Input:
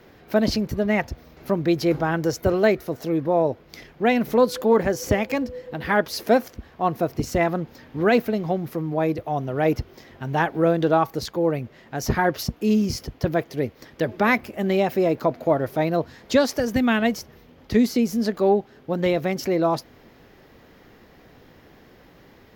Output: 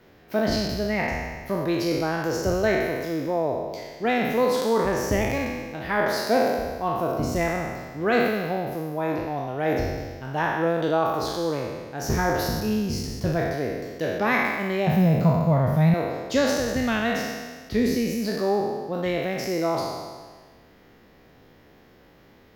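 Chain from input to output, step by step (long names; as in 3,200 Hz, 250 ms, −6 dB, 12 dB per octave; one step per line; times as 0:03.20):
peak hold with a decay on every bin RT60 1.53 s
0:14.87–0:15.94: low shelf with overshoot 240 Hz +10.5 dB, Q 3
level −6 dB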